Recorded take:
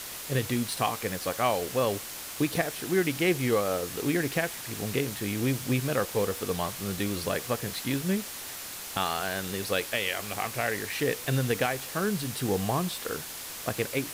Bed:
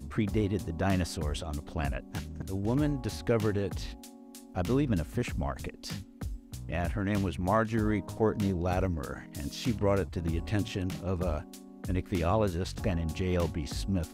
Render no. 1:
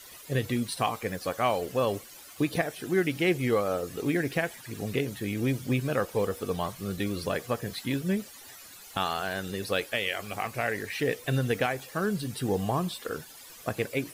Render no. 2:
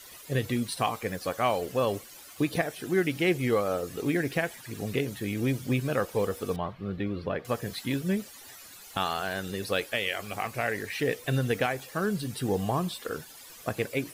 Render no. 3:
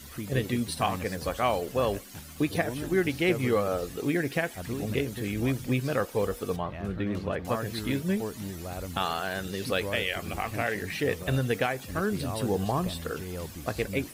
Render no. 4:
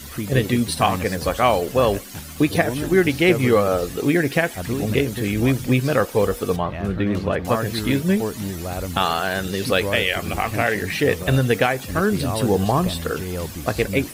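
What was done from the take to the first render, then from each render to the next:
noise reduction 14 dB, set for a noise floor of -40 dBFS
6.56–7.45 s: distance through air 380 m
add bed -8 dB
trim +9 dB

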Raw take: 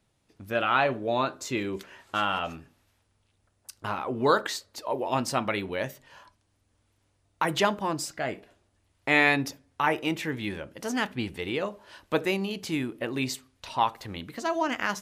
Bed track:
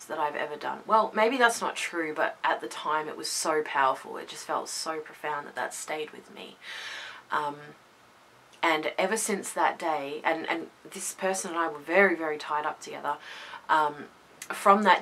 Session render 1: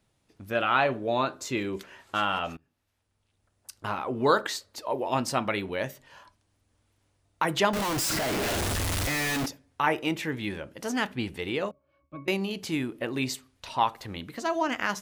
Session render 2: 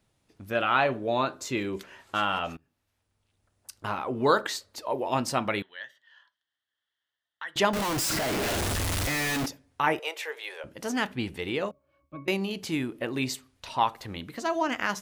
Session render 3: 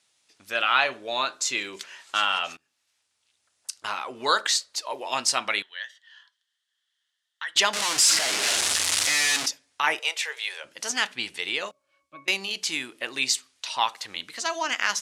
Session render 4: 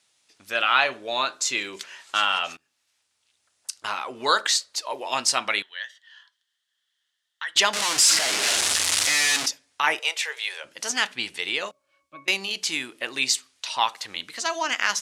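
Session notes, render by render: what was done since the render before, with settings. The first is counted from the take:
2.57–3.72 s: fade in, from -22 dB; 7.73–9.46 s: one-bit comparator; 11.71–12.28 s: pitch-class resonator C#, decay 0.21 s
5.62–7.56 s: two resonant band-passes 2.4 kHz, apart 0.82 oct; 9.99–10.64 s: Chebyshev high-pass 440 Hz, order 5
frequency weighting ITU-R 468
trim +1.5 dB

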